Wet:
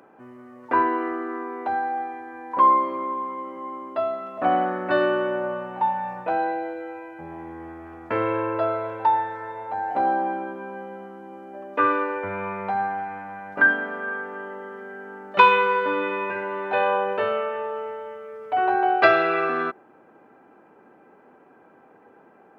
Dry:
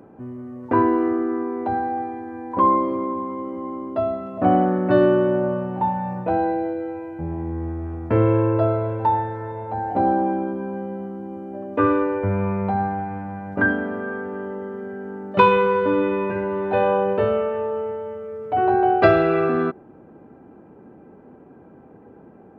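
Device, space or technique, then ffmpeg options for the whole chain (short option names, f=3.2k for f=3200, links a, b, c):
filter by subtraction: -filter_complex "[0:a]asplit=2[a][b];[b]lowpass=1.7k,volume=-1[c];[a][c]amix=inputs=2:normalize=0,volume=2.5dB"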